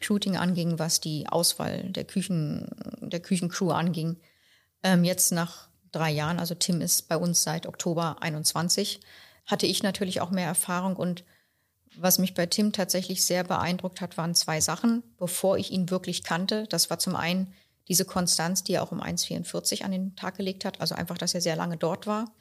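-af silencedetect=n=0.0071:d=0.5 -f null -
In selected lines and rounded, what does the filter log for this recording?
silence_start: 4.15
silence_end: 4.84 | silence_duration: 0.69
silence_start: 11.21
silence_end: 11.97 | silence_duration: 0.76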